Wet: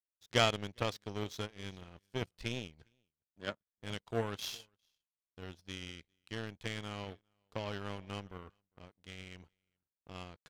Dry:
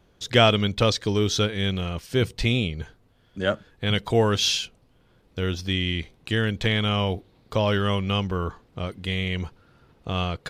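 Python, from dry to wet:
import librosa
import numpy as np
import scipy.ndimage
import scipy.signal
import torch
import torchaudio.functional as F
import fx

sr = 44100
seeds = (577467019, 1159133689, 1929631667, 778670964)

y = x + 10.0 ** (-18.5 / 20.0) * np.pad(x, (int(404 * sr / 1000.0), 0))[:len(x)]
y = fx.power_curve(y, sr, exponent=2.0)
y = y * librosa.db_to_amplitude(-6.0)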